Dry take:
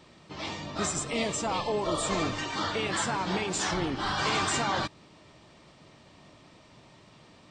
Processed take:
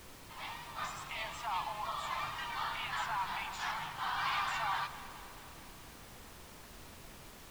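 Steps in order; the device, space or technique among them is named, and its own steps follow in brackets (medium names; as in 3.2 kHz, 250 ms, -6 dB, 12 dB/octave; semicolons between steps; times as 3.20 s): elliptic band-stop 140–900 Hz, stop band 40 dB; horn gramophone (band-pass 250–3100 Hz; peaking EQ 620 Hz +10.5 dB 0.51 oct; wow and flutter; pink noise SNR 12 dB); echo whose repeats swap between lows and highs 106 ms, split 1.3 kHz, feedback 81%, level -13 dB; trim -4.5 dB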